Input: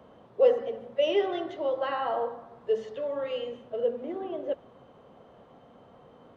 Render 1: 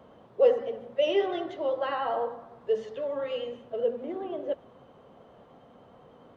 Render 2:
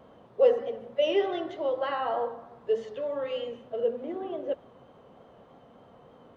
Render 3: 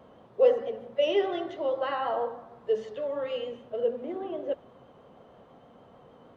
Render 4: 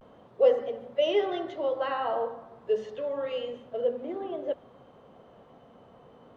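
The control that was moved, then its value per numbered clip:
vibrato, rate: 10, 3.3, 6.4, 0.3 Hz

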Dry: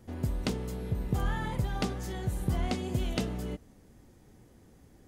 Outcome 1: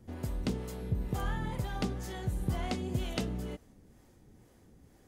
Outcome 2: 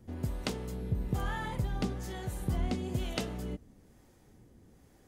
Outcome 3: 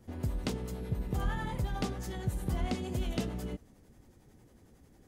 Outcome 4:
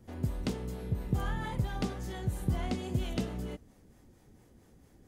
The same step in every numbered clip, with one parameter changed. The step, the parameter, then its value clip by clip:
harmonic tremolo, rate: 2.1, 1.1, 11, 4.4 Hz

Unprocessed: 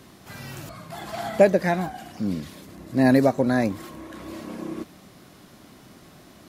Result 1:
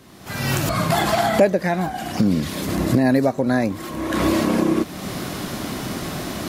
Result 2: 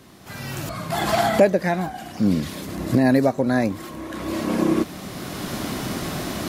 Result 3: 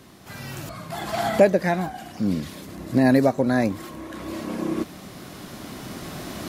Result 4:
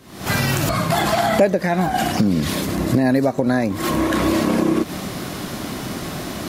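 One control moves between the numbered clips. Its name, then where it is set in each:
recorder AGC, rising by: 33, 13, 5.2, 85 dB/s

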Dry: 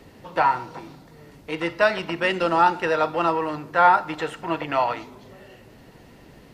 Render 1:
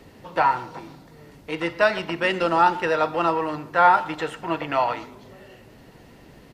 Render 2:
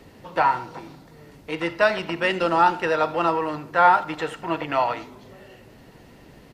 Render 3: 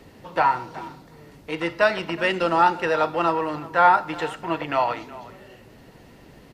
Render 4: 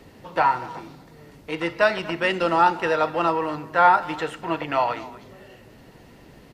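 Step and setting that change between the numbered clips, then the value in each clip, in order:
speakerphone echo, time: 120, 80, 370, 240 ms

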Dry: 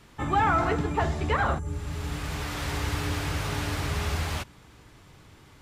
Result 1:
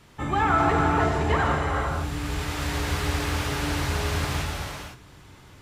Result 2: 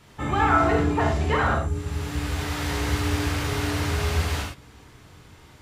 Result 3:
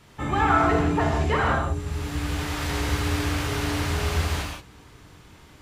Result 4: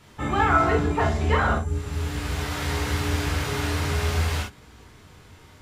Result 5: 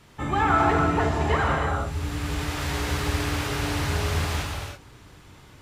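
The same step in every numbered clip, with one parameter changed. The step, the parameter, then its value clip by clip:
non-linear reverb, gate: 540, 130, 200, 80, 360 ms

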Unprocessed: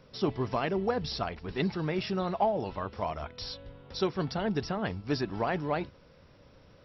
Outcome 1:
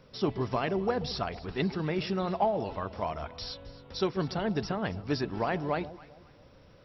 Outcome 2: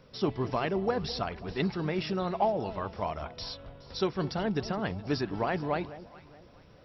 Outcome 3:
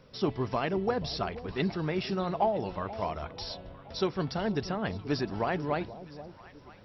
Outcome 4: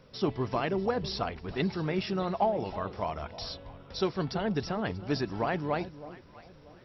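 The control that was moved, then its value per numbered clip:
echo with dull and thin repeats by turns, time: 0.133, 0.21, 0.482, 0.319 s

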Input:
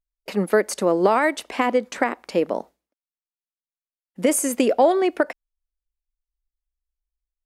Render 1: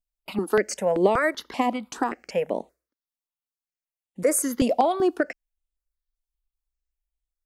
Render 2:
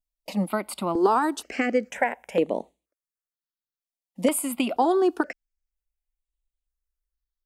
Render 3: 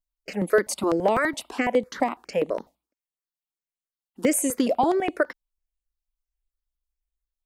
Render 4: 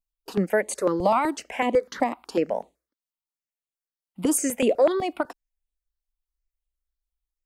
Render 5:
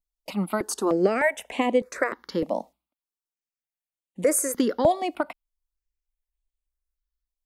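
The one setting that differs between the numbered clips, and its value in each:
step phaser, rate: 5.2, 2.1, 12, 8, 3.3 Hz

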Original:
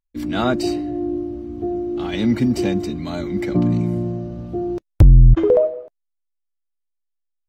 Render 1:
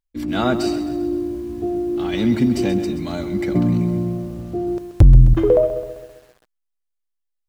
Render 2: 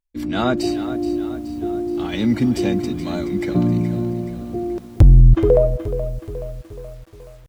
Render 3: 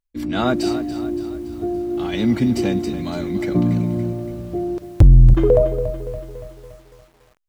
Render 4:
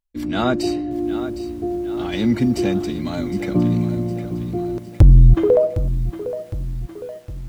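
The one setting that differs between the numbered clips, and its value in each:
lo-fi delay, time: 0.131, 0.425, 0.284, 0.76 s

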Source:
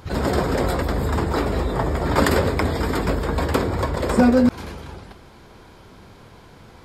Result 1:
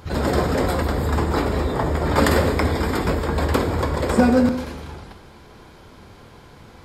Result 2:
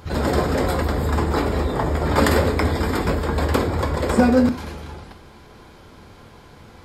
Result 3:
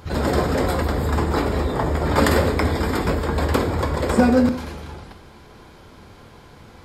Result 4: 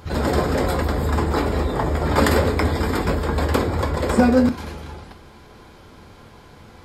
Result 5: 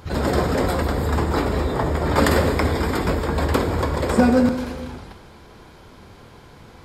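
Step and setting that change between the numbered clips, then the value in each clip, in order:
non-linear reverb, gate: 350, 140, 210, 90, 530 ms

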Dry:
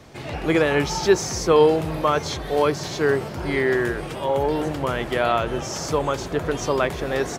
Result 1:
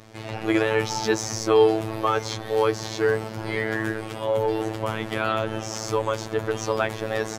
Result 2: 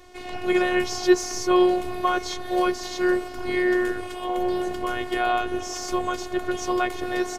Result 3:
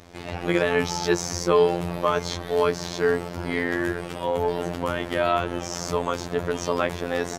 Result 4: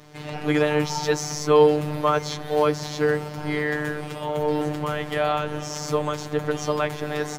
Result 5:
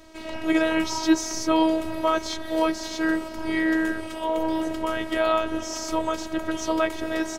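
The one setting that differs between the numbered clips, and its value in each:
robotiser, frequency: 110, 360, 87, 150, 320 Hz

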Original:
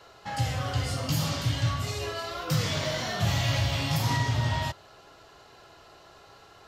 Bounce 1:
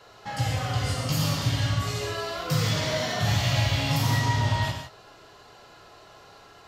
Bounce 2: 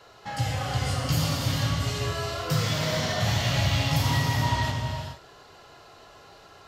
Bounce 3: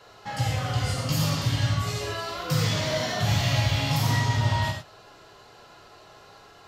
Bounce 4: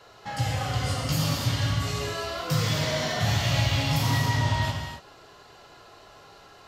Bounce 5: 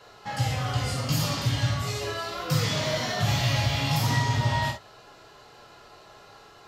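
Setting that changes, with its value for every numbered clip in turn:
non-linear reverb, gate: 190, 480, 130, 300, 80 ms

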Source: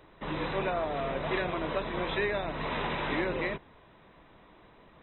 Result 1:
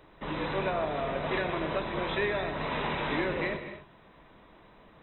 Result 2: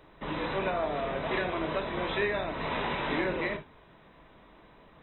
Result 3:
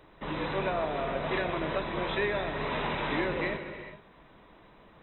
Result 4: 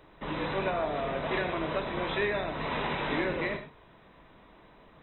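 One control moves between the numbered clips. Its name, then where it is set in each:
non-linear reverb, gate: 300, 90, 460, 150 ms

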